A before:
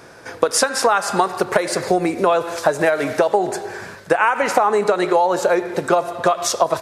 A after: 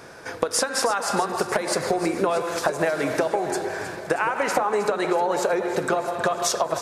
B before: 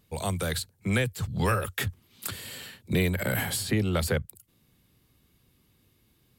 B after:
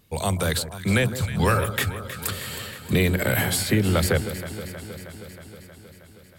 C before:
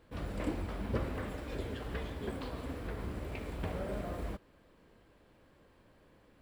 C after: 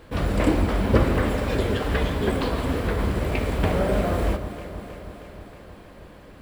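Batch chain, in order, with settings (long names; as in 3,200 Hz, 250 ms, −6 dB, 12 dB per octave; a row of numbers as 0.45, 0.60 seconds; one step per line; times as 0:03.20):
hum removal 59.29 Hz, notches 6
downward compressor, threshold −19 dBFS
delay that swaps between a low-pass and a high-pass 158 ms, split 1,300 Hz, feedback 83%, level −11 dB
loudness normalisation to −24 LKFS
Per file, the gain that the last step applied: −0.5, +5.5, +15.5 decibels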